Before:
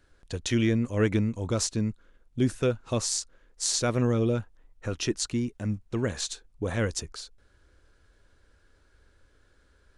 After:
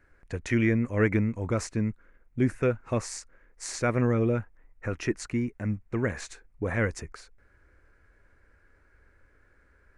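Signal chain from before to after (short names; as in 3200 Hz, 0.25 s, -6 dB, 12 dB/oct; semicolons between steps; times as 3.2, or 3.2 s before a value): resonant high shelf 2700 Hz -8 dB, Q 3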